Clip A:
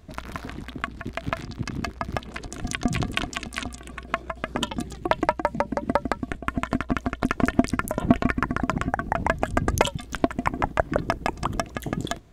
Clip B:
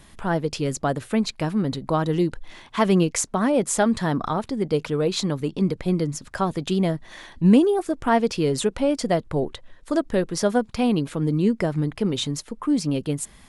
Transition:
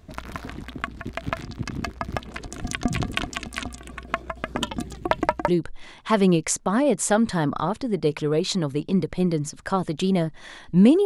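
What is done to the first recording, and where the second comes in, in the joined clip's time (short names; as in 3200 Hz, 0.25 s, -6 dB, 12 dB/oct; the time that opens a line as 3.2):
clip A
5.48 switch to clip B from 2.16 s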